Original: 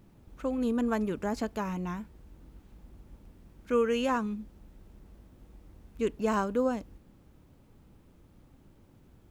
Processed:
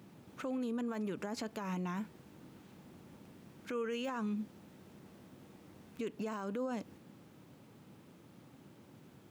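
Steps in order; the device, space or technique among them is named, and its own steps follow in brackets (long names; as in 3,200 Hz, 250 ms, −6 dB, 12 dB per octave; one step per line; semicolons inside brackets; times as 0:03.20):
broadcast voice chain (high-pass filter 120 Hz 24 dB per octave; de-essing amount 100%; downward compressor 3 to 1, threshold −34 dBFS, peak gain reduction 9 dB; parametric band 3,200 Hz +3 dB 2.9 octaves; brickwall limiter −33.5 dBFS, peak gain reduction 11.5 dB)
level +3 dB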